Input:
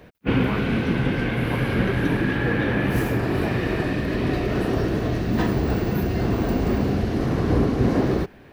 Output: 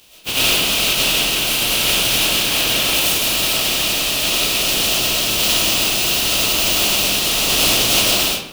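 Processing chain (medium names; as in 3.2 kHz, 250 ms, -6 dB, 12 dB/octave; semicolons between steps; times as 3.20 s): spectral contrast reduction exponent 0.27; resonant high shelf 2.3 kHz +6 dB, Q 3; reverberation RT60 0.70 s, pre-delay 60 ms, DRR -7.5 dB; trim -7.5 dB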